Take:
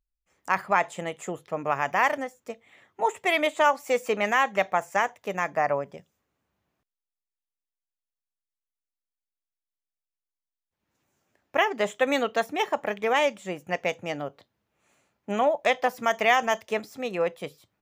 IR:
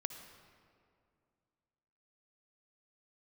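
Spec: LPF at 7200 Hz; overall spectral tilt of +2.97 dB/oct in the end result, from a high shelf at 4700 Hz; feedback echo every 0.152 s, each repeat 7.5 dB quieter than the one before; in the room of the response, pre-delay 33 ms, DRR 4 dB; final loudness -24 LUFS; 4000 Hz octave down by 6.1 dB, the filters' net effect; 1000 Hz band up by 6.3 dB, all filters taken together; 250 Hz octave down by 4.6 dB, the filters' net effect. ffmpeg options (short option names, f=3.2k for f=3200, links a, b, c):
-filter_complex "[0:a]lowpass=7.2k,equalizer=f=250:t=o:g=-6.5,equalizer=f=1k:t=o:g=9,equalizer=f=4k:t=o:g=-8.5,highshelf=f=4.7k:g=-3.5,aecho=1:1:152|304|456|608|760:0.422|0.177|0.0744|0.0312|0.0131,asplit=2[a][b];[1:a]atrim=start_sample=2205,adelay=33[c];[b][c]afir=irnorm=-1:irlink=0,volume=-3dB[d];[a][d]amix=inputs=2:normalize=0,volume=-3.5dB"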